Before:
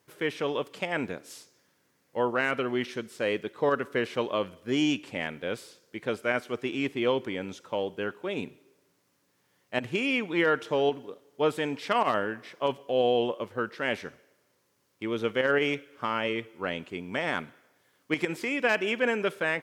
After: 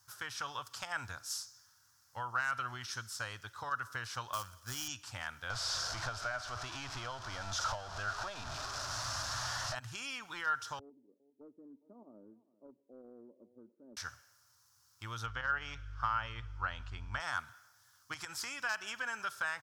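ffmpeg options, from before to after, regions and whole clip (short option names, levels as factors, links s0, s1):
-filter_complex "[0:a]asettb=1/sr,asplit=3[s0][s1][s2];[s0]atrim=end=4.334[s3];[s1]atrim=start=4.33:end=4.88,asetpts=PTS-STARTPTS,afade=t=in:d=0.004:c=qsin,afade=t=out:st=0.546:d=0.004:c=qsin,highpass=71,acrusher=bits=4:mode=log:mix=0:aa=0.000001[s4];[s2]atrim=start=4.876[s5];[s3][s4]acrossfade=d=0.004:c1=hsin:c2=qsin[s6];[s6][s5]acrossfade=d=0.004:c1=qsin:c2=hsin,asettb=1/sr,asplit=3[s7][s8][s9];[s7]atrim=end=5.504[s10];[s8]atrim=start=5.5:end=9.75,asetpts=PTS-STARTPTS,afade=t=in:d=0.004:c=qsin,afade=t=out:st=4.246:d=0.004:c=qsin,aeval=exprs='val(0)+0.5*0.0335*sgn(val(0))':c=same,lowpass=4200,equalizer=f=650:t=o:w=0.3:g=15[s11];[s9]atrim=start=9.746[s12];[s10][s11]acrossfade=d=0.004:c1=hsin:c2=qsin[s13];[s13][s12]acrossfade=d=0.004:c1=qsin:c2=hsin,asettb=1/sr,asplit=3[s14][s15][s16];[s14]atrim=end=10.794[s17];[s15]atrim=start=10.79:end=13.97,asetpts=PTS-STARTPTS,afade=t=in:d=0.004:c=qsin,afade=t=out:st=3.176:d=0.004:c=qsin,asuperpass=centerf=300:order=8:qfactor=1.1,aecho=1:1:3.3:0.37,atrim=end_sample=140238,aecho=1:1:406:0.1,atrim=end_sample=140238[s18];[s16]atrim=start=13.966[s19];[s17][s18]acrossfade=d=0.004:c1=hsin:c2=qsin[s20];[s20][s19]acrossfade=d=0.004:c1=qsin:c2=hsin,asettb=1/sr,asplit=3[s21][s22][s23];[s21]atrim=end=15.264[s24];[s22]atrim=start=15.26:end=17.2,asetpts=PTS-STARTPTS,afade=t=in:d=0.004:c=qsin,afade=t=out:st=1.936:d=0.004:c=qsin,lowpass=3900,aeval=exprs='val(0)+0.00447*(sin(2*PI*50*n/s)+sin(2*PI*2*50*n/s)/2+sin(2*PI*3*50*n/s)/3+sin(2*PI*4*50*n/s)/4+sin(2*PI*5*50*n/s)/5)':c=same[s25];[s23]atrim=start=17.196[s26];[s24][s25]acrossfade=d=0.004:c1=hsin:c2=qsin[s27];[s27][s26]acrossfade=d=0.004:c1=qsin:c2=hsin,acompressor=threshold=0.0355:ratio=5,firequalizer=gain_entry='entry(110,0);entry(160,-22);entry(420,-30);entry(790,-9);entry(1400,1);entry(2100,-16);entry(5300,6);entry(8500,0)':delay=0.05:min_phase=1,volume=1.68"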